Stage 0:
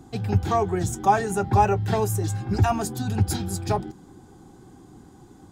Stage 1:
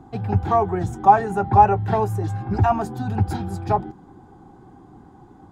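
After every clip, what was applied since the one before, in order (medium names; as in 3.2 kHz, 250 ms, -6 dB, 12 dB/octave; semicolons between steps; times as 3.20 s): FFT filter 520 Hz 0 dB, 830 Hz +6 dB, 7.1 kHz -15 dB; trim +1 dB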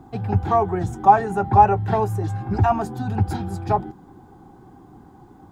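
word length cut 12-bit, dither none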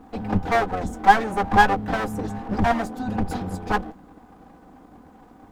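comb filter that takes the minimum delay 4 ms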